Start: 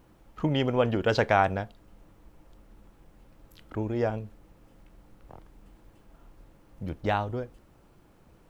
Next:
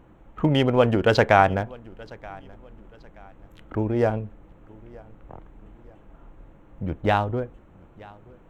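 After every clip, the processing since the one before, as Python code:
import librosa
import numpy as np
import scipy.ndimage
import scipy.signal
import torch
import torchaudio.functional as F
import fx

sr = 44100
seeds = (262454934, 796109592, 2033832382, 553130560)

y = fx.wiener(x, sr, points=9)
y = fx.echo_feedback(y, sr, ms=927, feedback_pct=34, wet_db=-23.5)
y = y * librosa.db_to_amplitude(6.0)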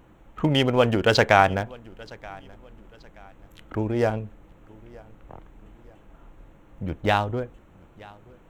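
y = fx.high_shelf(x, sr, hz=2500.0, db=9.5)
y = y * librosa.db_to_amplitude(-1.5)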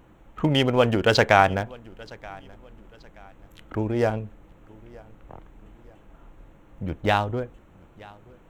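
y = x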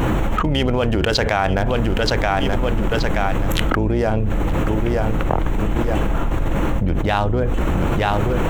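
y = fx.octave_divider(x, sr, octaves=2, level_db=-1.0)
y = fx.env_flatten(y, sr, amount_pct=100)
y = y * librosa.db_to_amplitude(-4.0)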